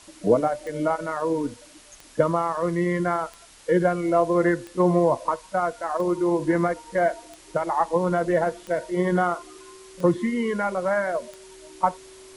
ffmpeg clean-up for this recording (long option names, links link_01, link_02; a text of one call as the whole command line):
ffmpeg -i in.wav -af "adeclick=threshold=4,bandreject=frequency=380:width=30,afwtdn=0.004" out.wav